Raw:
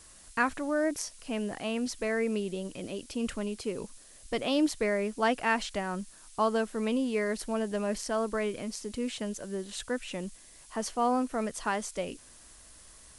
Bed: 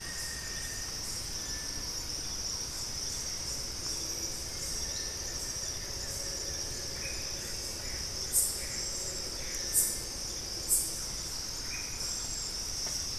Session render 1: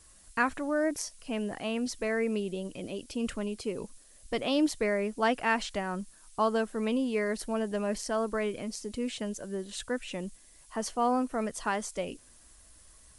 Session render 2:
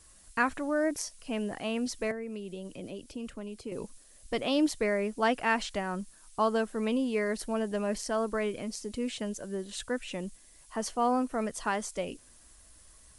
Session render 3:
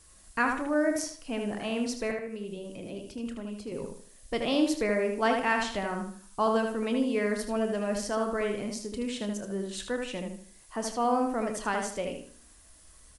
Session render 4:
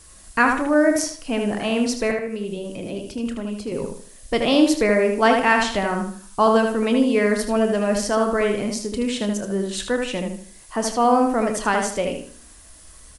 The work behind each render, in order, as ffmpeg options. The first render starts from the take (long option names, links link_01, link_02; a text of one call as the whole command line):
ffmpeg -i in.wav -af "afftdn=noise_reduction=6:noise_floor=-54" out.wav
ffmpeg -i in.wav -filter_complex "[0:a]asettb=1/sr,asplit=3[link_01][link_02][link_03];[link_01]atrim=end=2.114[link_04];[link_02]atrim=start=2.11:end=3.72,asetpts=PTS-STARTPTS,afade=type=in:duration=0.004:curve=qsin,afade=type=out:start_time=1.606:duration=0.004:curve=qsin,acrossover=split=150|790[link_05][link_06][link_07];[link_05]acompressor=threshold=-50dB:ratio=4[link_08];[link_06]acompressor=threshold=-39dB:ratio=4[link_09];[link_07]acompressor=threshold=-51dB:ratio=4[link_10];[link_08][link_09][link_10]amix=inputs=3:normalize=0[link_11];[link_03]atrim=start=3.716[link_12];[link_04][link_11]acrossfade=duration=0.004:curve1=hsin:curve2=qsin[link_13];[link_13][link_12]acrossfade=duration=0.004:curve1=qsin:curve2=hsin" out.wav
ffmpeg -i in.wav -filter_complex "[0:a]asplit=2[link_01][link_02];[link_02]adelay=30,volume=-12dB[link_03];[link_01][link_03]amix=inputs=2:normalize=0,asplit=2[link_04][link_05];[link_05]adelay=77,lowpass=frequency=3800:poles=1,volume=-4dB,asplit=2[link_06][link_07];[link_07]adelay=77,lowpass=frequency=3800:poles=1,volume=0.35,asplit=2[link_08][link_09];[link_09]adelay=77,lowpass=frequency=3800:poles=1,volume=0.35,asplit=2[link_10][link_11];[link_11]adelay=77,lowpass=frequency=3800:poles=1,volume=0.35[link_12];[link_06][link_08][link_10][link_12]amix=inputs=4:normalize=0[link_13];[link_04][link_13]amix=inputs=2:normalize=0" out.wav
ffmpeg -i in.wav -af "volume=9.5dB" out.wav